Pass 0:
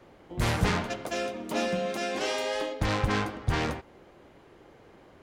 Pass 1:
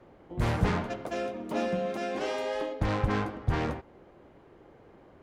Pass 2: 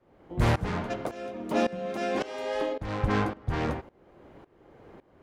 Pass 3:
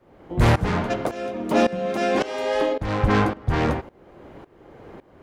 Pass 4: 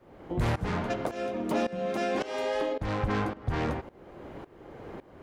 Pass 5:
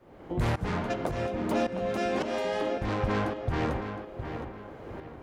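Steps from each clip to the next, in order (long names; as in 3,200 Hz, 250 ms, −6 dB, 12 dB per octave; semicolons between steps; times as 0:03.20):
high-shelf EQ 2,300 Hz −11.5 dB
shaped tremolo saw up 1.8 Hz, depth 90%; level +6 dB
soft clipping −15 dBFS, distortion −22 dB; level +8 dB
downward compressor 2.5 to 1, threshold −30 dBFS, peak gain reduction 11 dB
feedback echo with a low-pass in the loop 713 ms, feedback 36%, low-pass 3,900 Hz, level −8 dB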